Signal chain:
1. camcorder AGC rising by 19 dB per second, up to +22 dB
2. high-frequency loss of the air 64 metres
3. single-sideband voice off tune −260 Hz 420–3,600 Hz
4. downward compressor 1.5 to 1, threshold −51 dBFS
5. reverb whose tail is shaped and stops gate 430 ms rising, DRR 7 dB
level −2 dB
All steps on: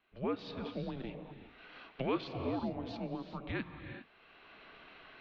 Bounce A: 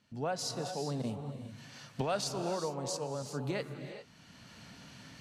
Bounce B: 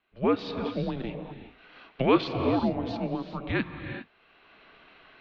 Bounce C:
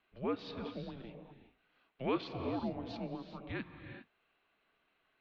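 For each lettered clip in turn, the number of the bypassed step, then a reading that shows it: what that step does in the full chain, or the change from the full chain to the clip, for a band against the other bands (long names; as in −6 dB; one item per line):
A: 3, 250 Hz band −5.5 dB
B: 4, average gain reduction 7.5 dB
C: 1, change in momentary loudness spread −3 LU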